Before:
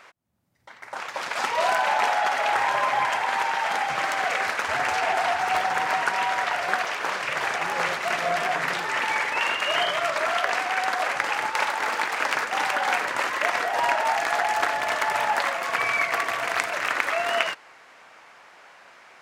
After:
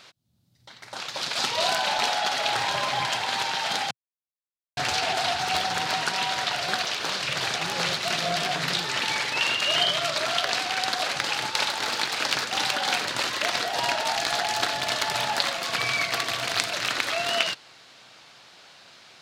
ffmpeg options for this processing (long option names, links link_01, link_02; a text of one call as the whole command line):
ffmpeg -i in.wav -filter_complex "[0:a]asplit=3[link_01][link_02][link_03];[link_01]atrim=end=3.91,asetpts=PTS-STARTPTS,afade=type=out:start_time=3.906:duration=0.004:curve=hsin[link_04];[link_02]atrim=start=3.91:end=4.77,asetpts=PTS-STARTPTS,volume=0[link_05];[link_03]atrim=start=4.77,asetpts=PTS-STARTPTS,afade=type=in:duration=0.004:curve=hsin[link_06];[link_04][link_05][link_06]concat=n=3:v=0:a=1,equalizer=frequency=125:width_type=o:width=1:gain=8,equalizer=frequency=500:width_type=o:width=1:gain=-4,equalizer=frequency=1000:width_type=o:width=1:gain=-7,equalizer=frequency=2000:width_type=o:width=1:gain=-8,equalizer=frequency=4000:width_type=o:width=1:gain=11,volume=2.5dB" out.wav